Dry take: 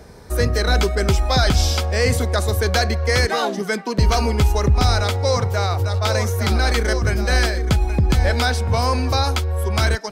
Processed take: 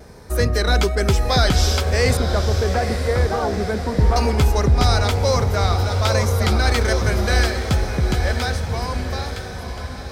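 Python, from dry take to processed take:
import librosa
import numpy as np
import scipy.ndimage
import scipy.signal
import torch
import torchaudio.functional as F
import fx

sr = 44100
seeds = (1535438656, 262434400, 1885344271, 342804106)

y = fx.fade_out_tail(x, sr, length_s=3.11)
y = fx.lowpass(y, sr, hz=1100.0, slope=12, at=(2.17, 4.16))
y = fx.echo_diffused(y, sr, ms=903, feedback_pct=56, wet_db=-8.5)
y = fx.vibrato(y, sr, rate_hz=1.2, depth_cents=26.0)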